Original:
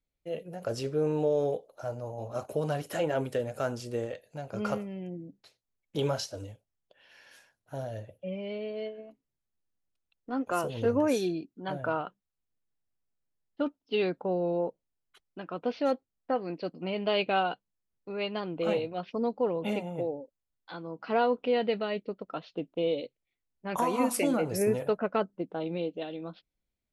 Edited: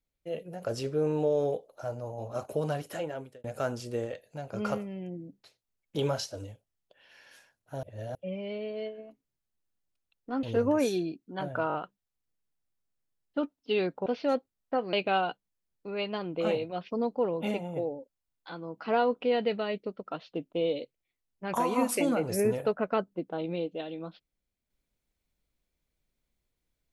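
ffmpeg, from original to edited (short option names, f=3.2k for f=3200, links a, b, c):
-filter_complex "[0:a]asplit=10[a][b][c][d][e][f][g][h][i][j];[a]atrim=end=3.44,asetpts=PTS-STARTPTS,afade=t=out:st=2.67:d=0.77[k];[b]atrim=start=3.44:end=7.832,asetpts=PTS-STARTPTS,afade=t=in:d=0.004:c=hsin[l];[c]atrim=start=7.828:end=8.152,asetpts=PTS-STARTPTS,areverse[m];[d]atrim=start=8.148:end=10.432[n];[e]atrim=start=10.718:end=11.992[o];[f]atrim=start=11.968:end=11.992[p];[g]atrim=start=11.968:end=11.992[q];[h]atrim=start=11.968:end=14.292[r];[i]atrim=start=15.628:end=16.502[s];[j]atrim=start=17.148[t];[k][l]concat=n=2:v=0:a=1[u];[u][m]acrossfade=d=0.004:c1=hsin:c2=hsin[v];[v][n]acrossfade=d=0.004:c1=hsin:c2=hsin[w];[w][o]acrossfade=d=0.004:c1=hsin:c2=hsin[x];[x][p]acrossfade=d=0.004:c1=hsin:c2=hsin[y];[y][q]acrossfade=d=0.004:c1=hsin:c2=hsin[z];[z][r]acrossfade=d=0.004:c1=hsin:c2=hsin[aa];[aa][s]acrossfade=d=0.004:c1=hsin:c2=hsin[ab];[ab][t]acrossfade=d=0.004:c1=hsin:c2=hsin"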